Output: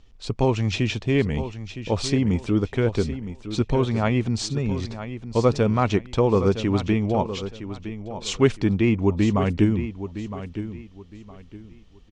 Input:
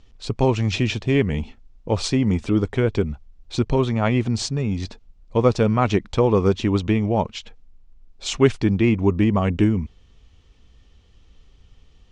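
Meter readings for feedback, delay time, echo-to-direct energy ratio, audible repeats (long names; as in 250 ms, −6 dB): 27%, 963 ms, −11.0 dB, 3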